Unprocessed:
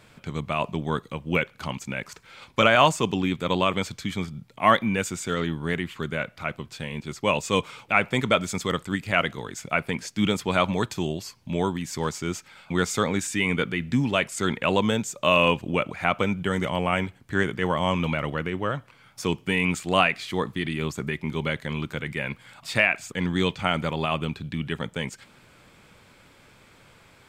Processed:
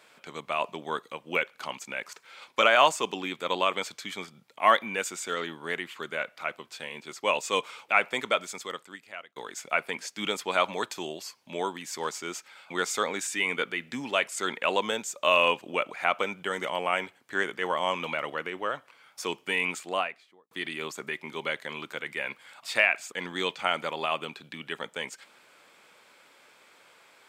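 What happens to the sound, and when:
8.03–9.36 s: fade out
19.59–20.51 s: studio fade out
whole clip: high-pass 460 Hz 12 dB/octave; trim -1.5 dB

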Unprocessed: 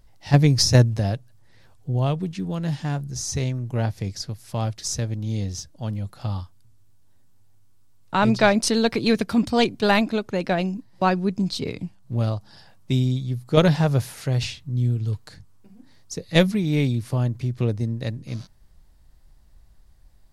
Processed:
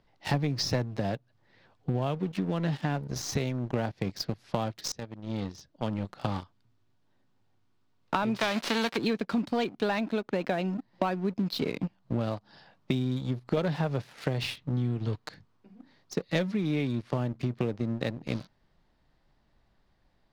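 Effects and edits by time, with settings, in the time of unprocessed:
4.92–6.35 s: fade in, from -16.5 dB
8.35–8.96 s: formants flattened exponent 0.3
17.10–17.65 s: de-hum 74.89 Hz, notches 4
whole clip: three-band isolator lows -16 dB, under 150 Hz, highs -24 dB, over 4.5 kHz; waveshaping leveller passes 2; compression 8:1, threshold -28 dBFS; trim +2 dB

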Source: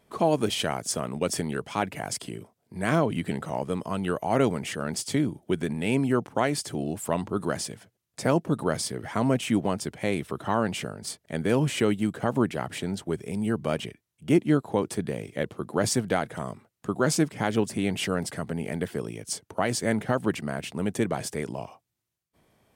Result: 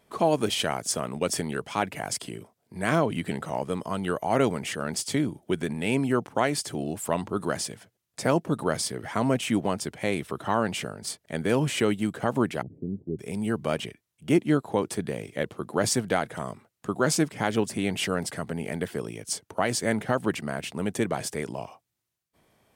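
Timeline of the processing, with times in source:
3.75–4.29 s: band-stop 2.6 kHz
12.62–13.19 s: inverse Chebyshev low-pass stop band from 1.3 kHz, stop band 60 dB
whole clip: bass shelf 400 Hz -3.5 dB; trim +1.5 dB

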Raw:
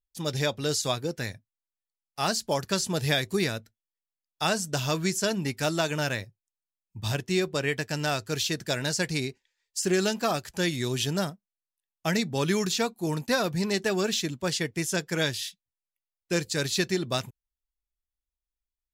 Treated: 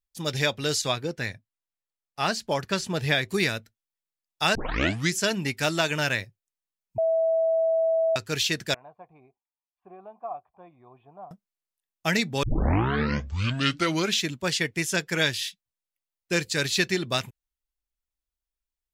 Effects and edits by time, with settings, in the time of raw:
0.81–3.28 s: treble shelf 6.8 kHz -> 3.7 kHz -9 dB
4.55 s: tape start 0.58 s
6.98–8.16 s: bleep 652 Hz -20.5 dBFS
8.74–11.31 s: cascade formant filter a
12.43 s: tape start 1.77 s
whole clip: dynamic bell 2.3 kHz, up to +7 dB, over -44 dBFS, Q 0.87

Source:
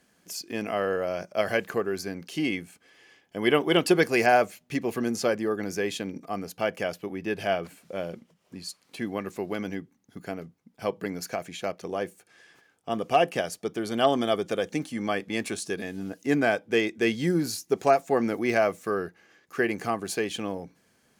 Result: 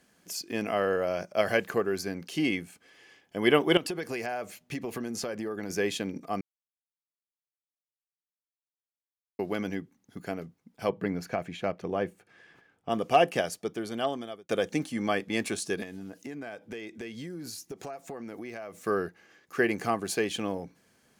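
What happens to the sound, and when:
3.77–5.70 s: compression 8:1, threshold -30 dBFS
6.41–9.39 s: mute
10.89–12.89 s: tone controls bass +5 dB, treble -12 dB
13.43–14.49 s: fade out
15.83–18.83 s: compression 10:1, threshold -36 dBFS

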